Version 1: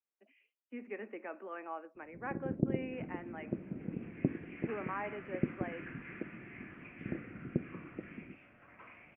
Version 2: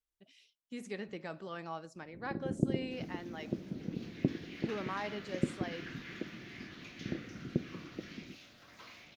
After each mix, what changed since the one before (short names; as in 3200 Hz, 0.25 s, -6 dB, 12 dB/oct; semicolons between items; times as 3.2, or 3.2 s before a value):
speech: remove steep high-pass 220 Hz 72 dB/oct; master: remove elliptic low-pass 2500 Hz, stop band 40 dB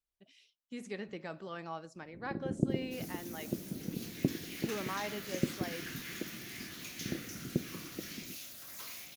second sound: remove air absorption 230 m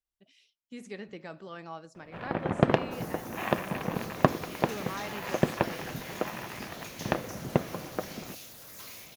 first sound: remove ladder low-pass 380 Hz, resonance 40%